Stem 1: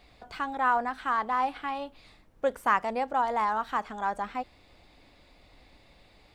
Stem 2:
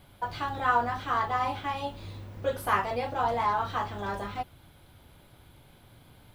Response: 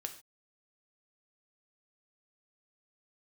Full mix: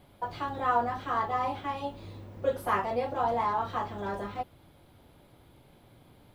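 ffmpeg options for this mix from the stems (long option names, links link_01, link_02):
-filter_complex "[0:a]volume=-16.5dB[link_01];[1:a]volume=-1,volume=-6dB[link_02];[link_01][link_02]amix=inputs=2:normalize=0,equalizer=frequency=380:width=0.42:gain=7.5,bandreject=frequency=1500:width=25"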